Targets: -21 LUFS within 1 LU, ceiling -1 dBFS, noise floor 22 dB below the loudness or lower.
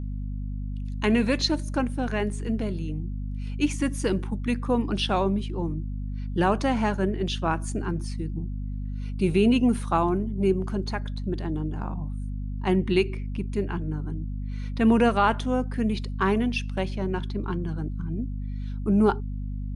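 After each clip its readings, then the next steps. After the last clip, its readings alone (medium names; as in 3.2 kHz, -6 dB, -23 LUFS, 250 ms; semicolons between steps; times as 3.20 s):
hum 50 Hz; highest harmonic 250 Hz; hum level -29 dBFS; loudness -27.0 LUFS; peak level -9.5 dBFS; loudness target -21.0 LUFS
-> de-hum 50 Hz, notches 5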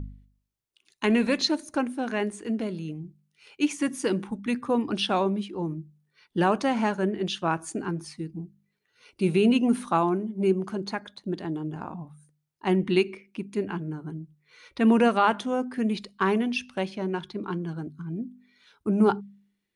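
hum not found; loudness -27.0 LUFS; peak level -10.0 dBFS; loudness target -21.0 LUFS
-> trim +6 dB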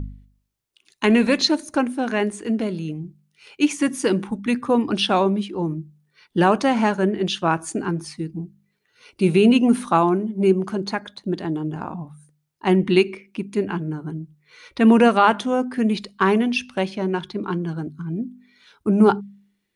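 loudness -21.0 LUFS; peak level -4.0 dBFS; noise floor -72 dBFS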